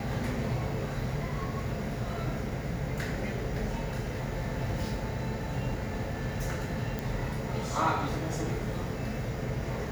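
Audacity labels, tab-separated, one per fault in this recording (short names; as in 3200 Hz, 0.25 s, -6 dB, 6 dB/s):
6.990000	6.990000	pop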